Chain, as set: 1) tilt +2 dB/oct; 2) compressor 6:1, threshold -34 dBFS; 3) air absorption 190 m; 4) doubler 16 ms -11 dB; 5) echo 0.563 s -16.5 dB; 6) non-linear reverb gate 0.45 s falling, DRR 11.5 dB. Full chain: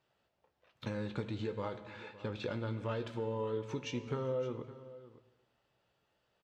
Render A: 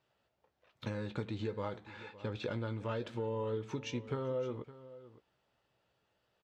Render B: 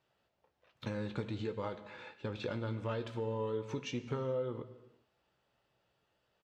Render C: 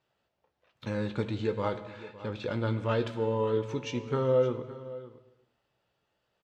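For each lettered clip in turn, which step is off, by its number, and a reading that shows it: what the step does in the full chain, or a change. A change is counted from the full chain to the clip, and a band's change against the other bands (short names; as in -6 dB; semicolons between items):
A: 6, echo-to-direct -10.0 dB to -16.5 dB; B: 5, momentary loudness spread change -2 LU; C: 2, momentary loudness spread change +3 LU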